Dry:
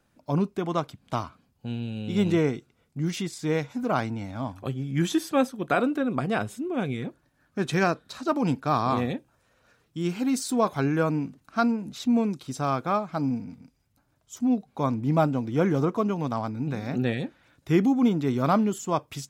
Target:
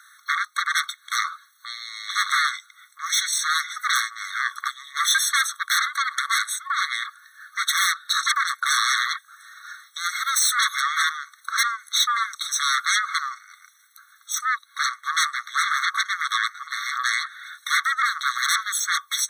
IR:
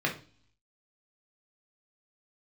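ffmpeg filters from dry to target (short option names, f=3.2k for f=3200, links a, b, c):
-filter_complex "[0:a]equalizer=f=210:w=3.8:g=-4.5,asplit=2[a][b];[b]acompressor=threshold=-38dB:ratio=5,volume=1.5dB[c];[a][c]amix=inputs=2:normalize=0,aeval=exprs='0.398*sin(PI/2*8.91*val(0)/0.398)':c=same,afftfilt=real='re*eq(mod(floor(b*sr/1024/1100),2),1)':imag='im*eq(mod(floor(b*sr/1024/1100),2),1)':win_size=1024:overlap=0.75,volume=-4.5dB"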